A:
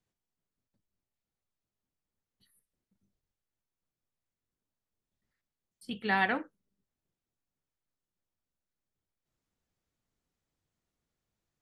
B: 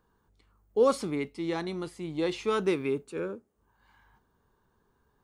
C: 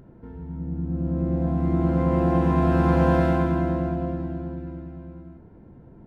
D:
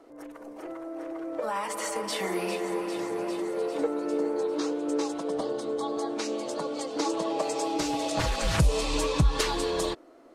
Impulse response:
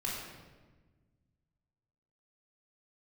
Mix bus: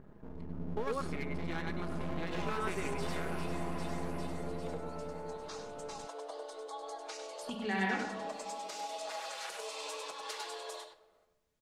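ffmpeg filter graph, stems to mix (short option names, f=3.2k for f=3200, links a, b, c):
-filter_complex "[0:a]adelay=1600,volume=1.5dB,asplit=3[a][b][c];[b]volume=-13dB[d];[c]volume=-13dB[e];[1:a]equalizer=f=1.6k:t=o:w=1.4:g=13,volume=-5dB,asplit=3[f][g][h];[g]volume=-12.5dB[i];[2:a]lowpass=f=1.5k:w=0.5412,lowpass=f=1.5k:w=1.3066,asoftclip=type=tanh:threshold=-23.5dB,volume=-3.5dB[j];[3:a]highpass=f=520:w=0.5412,highpass=f=520:w=1.3066,dynaudnorm=f=140:g=11:m=5.5dB,adelay=900,volume=-14.5dB,asplit=3[k][l][m];[l]volume=-16dB[n];[m]volume=-8.5dB[o];[h]apad=whole_len=495989[p];[k][p]sidechaincompress=threshold=-39dB:ratio=8:attack=16:release=723[q];[a][q]amix=inputs=2:normalize=0,acompressor=threshold=-42dB:ratio=6,volume=0dB[r];[f][j]amix=inputs=2:normalize=0,aeval=exprs='max(val(0),0)':c=same,acompressor=threshold=-33dB:ratio=6,volume=0dB[s];[4:a]atrim=start_sample=2205[t];[d][n]amix=inputs=2:normalize=0[u];[u][t]afir=irnorm=-1:irlink=0[v];[e][i][o]amix=inputs=3:normalize=0,aecho=0:1:99:1[w];[r][s][v][w]amix=inputs=4:normalize=0,aecho=1:1:4.8:0.31"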